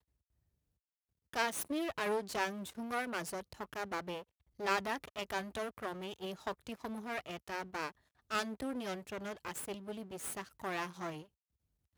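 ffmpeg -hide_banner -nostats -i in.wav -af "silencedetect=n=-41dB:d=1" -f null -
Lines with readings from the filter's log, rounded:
silence_start: 0.00
silence_end: 1.33 | silence_duration: 1.33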